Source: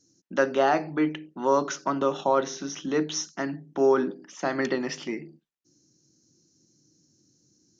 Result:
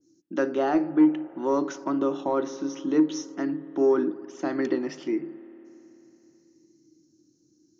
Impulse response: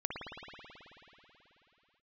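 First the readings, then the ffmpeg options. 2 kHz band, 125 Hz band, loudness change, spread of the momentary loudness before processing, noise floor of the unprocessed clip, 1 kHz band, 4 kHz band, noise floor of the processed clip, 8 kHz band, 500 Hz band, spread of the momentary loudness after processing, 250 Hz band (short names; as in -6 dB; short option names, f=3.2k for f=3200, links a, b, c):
-6.5 dB, -4.5 dB, +0.5 dB, 11 LU, -67 dBFS, -5.0 dB, -8.0 dB, -65 dBFS, n/a, -1.0 dB, 10 LU, +5.5 dB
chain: -filter_complex "[0:a]equalizer=f=320:t=o:w=0.47:g=15,asoftclip=type=tanh:threshold=-4dB,asplit=2[a][b];[1:a]atrim=start_sample=2205,lowpass=2.1k[c];[b][c]afir=irnorm=-1:irlink=0,volume=-18dB[d];[a][d]amix=inputs=2:normalize=0,adynamicequalizer=threshold=0.0158:dfrequency=2200:dqfactor=0.7:tfrequency=2200:tqfactor=0.7:attack=5:release=100:ratio=0.375:range=2:mode=cutabove:tftype=highshelf,volume=-6dB"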